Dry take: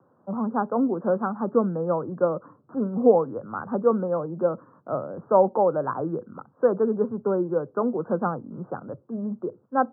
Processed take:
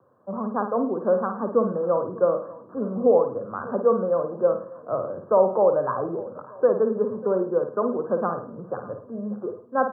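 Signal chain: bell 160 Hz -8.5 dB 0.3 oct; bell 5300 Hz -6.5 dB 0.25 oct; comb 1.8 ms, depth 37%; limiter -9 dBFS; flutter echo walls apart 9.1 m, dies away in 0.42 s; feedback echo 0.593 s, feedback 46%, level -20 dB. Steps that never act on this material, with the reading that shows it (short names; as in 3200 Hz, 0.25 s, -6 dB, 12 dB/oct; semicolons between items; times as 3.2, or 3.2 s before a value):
bell 5300 Hz: input band ends at 1500 Hz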